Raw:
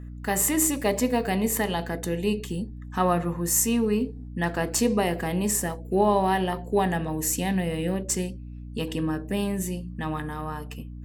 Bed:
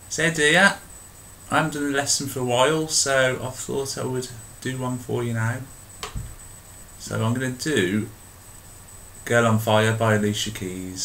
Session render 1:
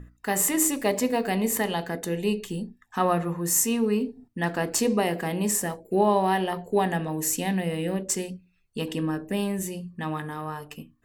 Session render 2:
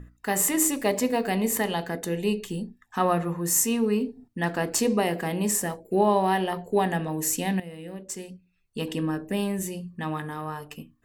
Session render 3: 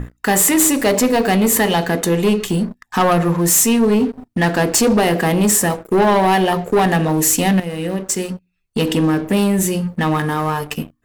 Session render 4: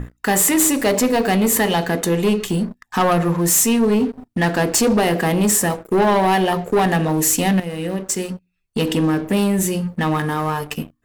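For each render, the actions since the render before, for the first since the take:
mains-hum notches 60/120/180/240/300 Hz
0:07.60–0:08.86: fade in quadratic, from −12 dB
in parallel at 0 dB: downward compressor 5 to 1, threshold −35 dBFS, peak gain reduction 16.5 dB; on the sum: leveller curve on the samples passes 3
level −2 dB

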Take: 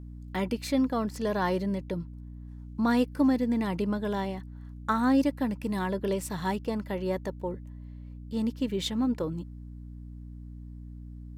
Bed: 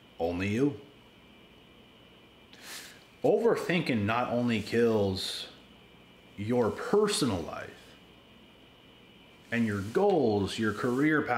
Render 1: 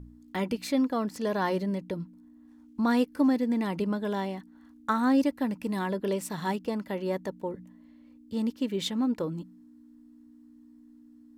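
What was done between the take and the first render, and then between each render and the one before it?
hum removal 60 Hz, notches 3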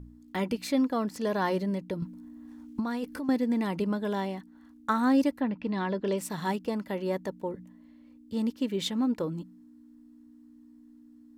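0:02.02–0:03.29: compressor whose output falls as the input rises −31 dBFS
0:05.39–0:06.16: low-pass filter 3,100 Hz → 8,100 Hz 24 dB per octave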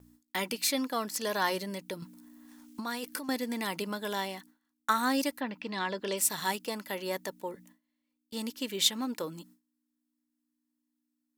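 noise gate with hold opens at −42 dBFS
spectral tilt +4 dB per octave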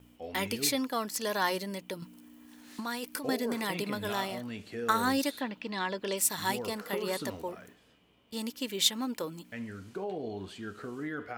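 mix in bed −11.5 dB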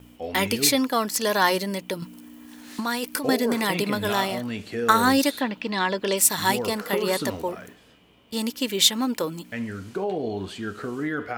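level +9 dB
brickwall limiter −3 dBFS, peak gain reduction 2.5 dB

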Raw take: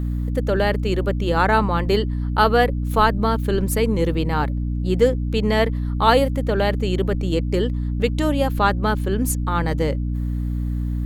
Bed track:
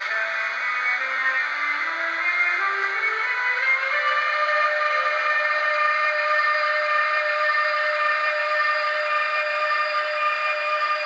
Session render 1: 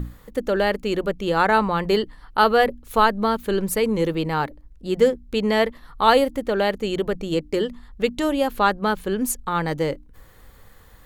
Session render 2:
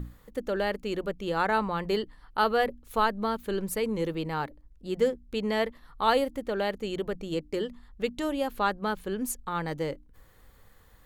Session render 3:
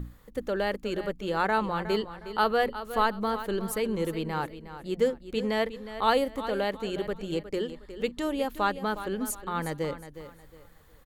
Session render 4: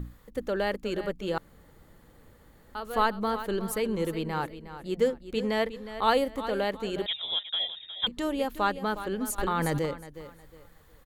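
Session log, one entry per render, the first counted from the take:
mains-hum notches 60/120/180/240/300 Hz
level −8 dB
repeating echo 362 ms, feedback 31%, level −12.5 dB
0:01.38–0:02.75: fill with room tone; 0:07.06–0:08.07: voice inversion scrambler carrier 3,700 Hz; 0:09.38–0:09.86: envelope flattener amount 100%

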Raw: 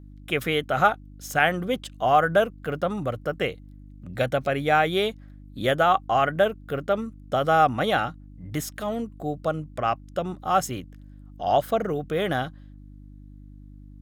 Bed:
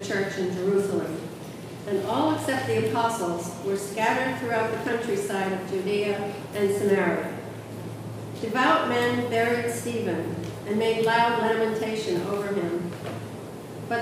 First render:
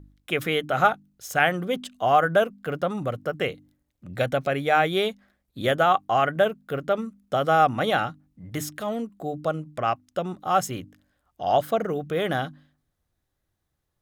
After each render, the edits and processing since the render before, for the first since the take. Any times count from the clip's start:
hum removal 50 Hz, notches 6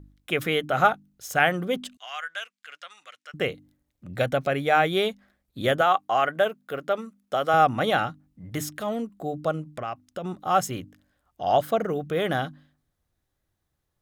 0:01.97–0:03.34: Chebyshev band-pass filter 2,100–7,700 Hz
0:05.81–0:07.54: high-pass filter 420 Hz 6 dB per octave
0:09.68–0:10.24: downward compressor 3 to 1, threshold −30 dBFS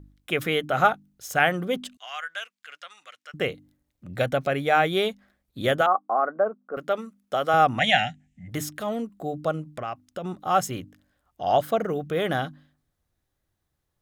0:05.86–0:06.77: elliptic band-pass filter 210–1,300 Hz, stop band 50 dB
0:07.79–0:08.48: drawn EQ curve 250 Hz 0 dB, 370 Hz −26 dB, 740 Hz +6 dB, 1,100 Hz −26 dB, 1,800 Hz +12 dB, 3,000 Hz +11 dB, 4,500 Hz −2 dB, 7,200 Hz +11 dB, 11,000 Hz −8 dB, 15,000 Hz −28 dB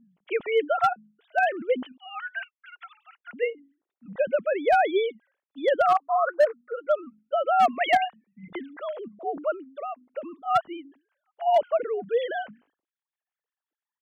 three sine waves on the formant tracks
gain into a clipping stage and back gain 13.5 dB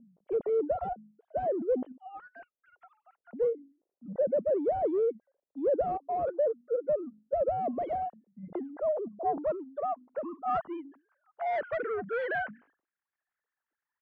soft clipping −30 dBFS, distortion −4 dB
low-pass filter sweep 560 Hz → 1,700 Hz, 0:08.06–0:11.99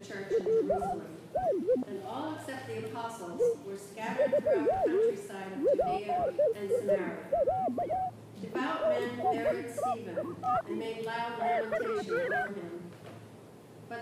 mix in bed −14 dB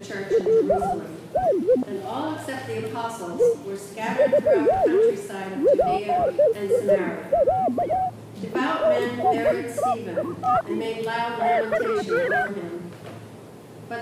level +9 dB

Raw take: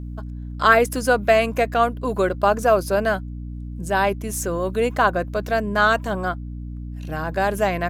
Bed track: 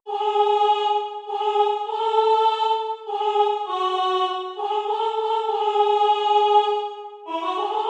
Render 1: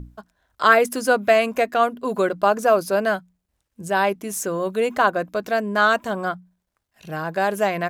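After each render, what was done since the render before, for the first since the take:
mains-hum notches 60/120/180/240/300 Hz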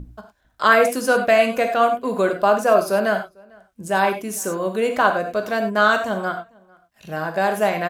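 slap from a distant wall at 77 metres, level −27 dB
reverb whose tail is shaped and stops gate 120 ms flat, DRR 5 dB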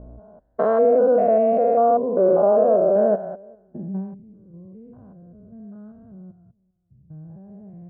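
spectrum averaged block by block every 200 ms
low-pass filter sweep 560 Hz → 100 Hz, 0:03.51–0:04.20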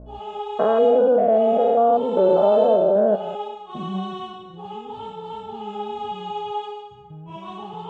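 mix in bed track −11.5 dB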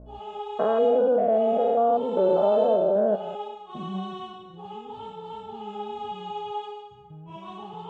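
level −4.5 dB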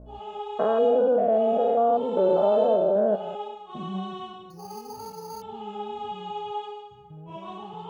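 0:00.68–0:01.69: notch filter 2,100 Hz, Q 11
0:04.50–0:05.42: bad sample-rate conversion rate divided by 8×, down filtered, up hold
0:07.17–0:07.58: parametric band 520 Hz +9 dB 0.68 octaves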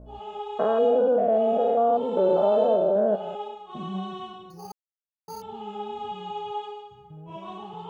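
0:04.72–0:05.28: silence

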